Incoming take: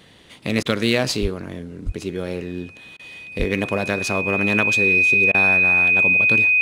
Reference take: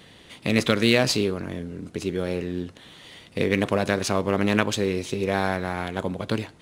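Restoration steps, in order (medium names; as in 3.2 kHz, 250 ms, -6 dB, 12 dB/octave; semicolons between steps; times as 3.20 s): band-stop 2.5 kHz, Q 30; de-plosive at 1.21/1.85/3.38 s; interpolate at 0.63/2.97/5.32 s, 22 ms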